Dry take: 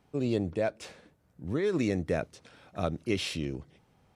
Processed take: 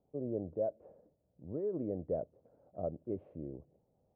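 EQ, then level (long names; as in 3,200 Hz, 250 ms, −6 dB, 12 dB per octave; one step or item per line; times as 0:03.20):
transistor ladder low-pass 680 Hz, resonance 55%
−1.5 dB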